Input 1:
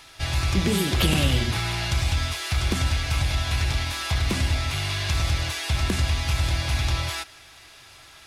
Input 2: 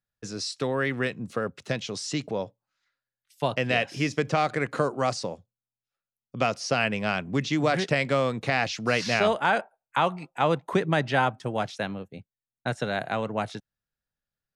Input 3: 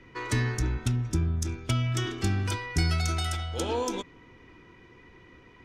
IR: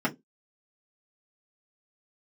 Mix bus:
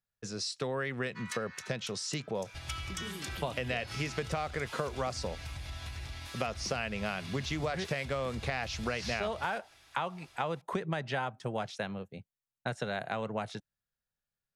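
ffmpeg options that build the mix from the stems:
-filter_complex "[0:a]alimiter=limit=-19.5dB:level=0:latency=1:release=372,adelay=2350,volume=-12.5dB[link_01];[1:a]equalizer=frequency=290:width_type=o:width=0.23:gain=-9,volume=-3dB,asplit=2[link_02][link_03];[2:a]highpass=frequency=1100:width=0.5412,highpass=frequency=1100:width=1.3066,adelay=1000,volume=-5dB[link_04];[link_03]apad=whole_len=292949[link_05];[link_04][link_05]sidechaincompress=threshold=-36dB:ratio=8:attack=8.5:release=168[link_06];[link_01][link_02][link_06]amix=inputs=3:normalize=0,acompressor=threshold=-30dB:ratio=6"

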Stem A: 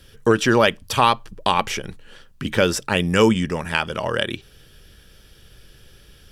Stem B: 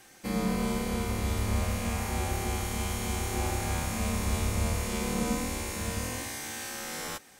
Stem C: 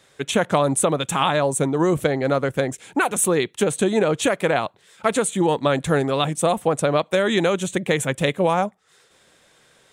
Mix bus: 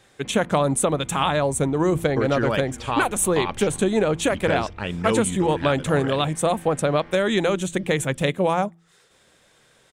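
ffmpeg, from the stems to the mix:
ffmpeg -i stem1.wav -i stem2.wav -i stem3.wav -filter_complex "[0:a]lowpass=4300,adelay=1900,volume=-9.5dB,asplit=2[link_01][link_02];[link_02]volume=-22dB[link_03];[1:a]lowpass=frequency=2800:width=0.5412,lowpass=frequency=2800:width=1.3066,acompressor=threshold=-40dB:ratio=6,volume=-5dB,asplit=2[link_04][link_05];[link_05]volume=-11dB[link_06];[2:a]bandreject=frequency=84.15:width_type=h:width=4,bandreject=frequency=168.3:width_type=h:width=4,bandreject=frequency=252.45:width_type=h:width=4,bandreject=frequency=336.6:width_type=h:width=4,volume=-2dB[link_07];[link_03][link_06]amix=inputs=2:normalize=0,aecho=0:1:351|702|1053|1404|1755:1|0.39|0.152|0.0593|0.0231[link_08];[link_01][link_04][link_07][link_08]amix=inputs=4:normalize=0,lowshelf=frequency=140:gain=5.5" out.wav

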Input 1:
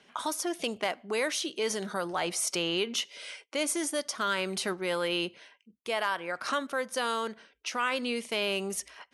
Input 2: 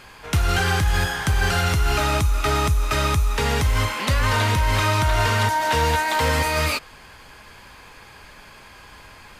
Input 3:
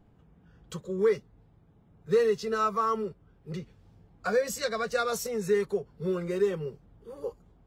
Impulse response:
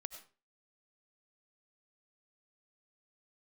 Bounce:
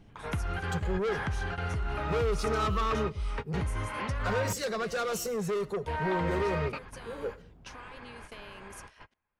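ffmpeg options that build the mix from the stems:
-filter_complex "[0:a]acompressor=threshold=-36dB:ratio=12,volume=-9.5dB,asplit=2[link_01][link_02];[1:a]acompressor=threshold=-27dB:ratio=12,lowpass=2000,volume=-1.5dB,asplit=3[link_03][link_04][link_05];[link_03]atrim=end=4.53,asetpts=PTS-STARTPTS,afade=type=out:start_time=4.526:duration=0.004:curve=hsin[link_06];[link_04]atrim=start=4.53:end=5.57,asetpts=PTS-STARTPTS,volume=0[link_07];[link_05]atrim=start=5.57,asetpts=PTS-STARTPTS,afade=type=in:duration=0.004:curve=hsin[link_08];[link_06][link_07][link_08]concat=n=3:v=0:a=1[link_09];[2:a]lowshelf=frequency=430:gain=4.5,asoftclip=type=tanh:threshold=-29dB,volume=-2dB,asplit=2[link_10][link_11];[link_11]volume=-3dB[link_12];[link_02]apad=whole_len=414245[link_13];[link_09][link_13]sidechaingate=range=-38dB:threshold=-56dB:ratio=16:detection=peak[link_14];[3:a]atrim=start_sample=2205[link_15];[link_12][link_15]afir=irnorm=-1:irlink=0[link_16];[link_01][link_14][link_10][link_16]amix=inputs=4:normalize=0"

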